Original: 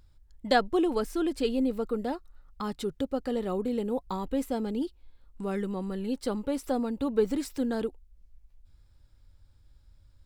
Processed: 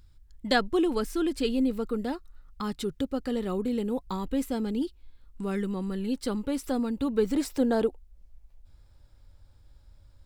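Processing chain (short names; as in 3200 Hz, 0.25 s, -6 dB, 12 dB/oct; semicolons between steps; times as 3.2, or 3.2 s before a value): bell 660 Hz -6.5 dB 1.3 oct, from 7.35 s +5.5 dB; gain +3 dB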